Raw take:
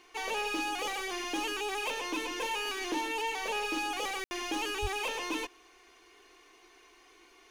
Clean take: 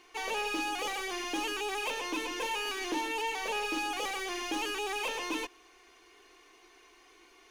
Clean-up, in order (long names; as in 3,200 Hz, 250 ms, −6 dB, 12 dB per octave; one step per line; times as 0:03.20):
0:04.81–0:04.93: high-pass filter 140 Hz 24 dB per octave
ambience match 0:04.24–0:04.31